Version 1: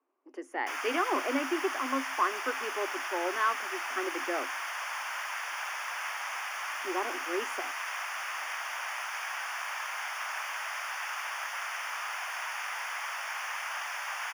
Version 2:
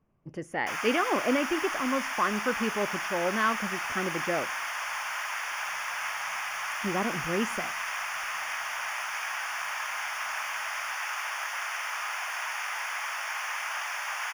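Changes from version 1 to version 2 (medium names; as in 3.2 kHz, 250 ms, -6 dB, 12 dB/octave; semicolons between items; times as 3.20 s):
speech: remove rippled Chebyshev high-pass 260 Hz, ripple 6 dB; background: send on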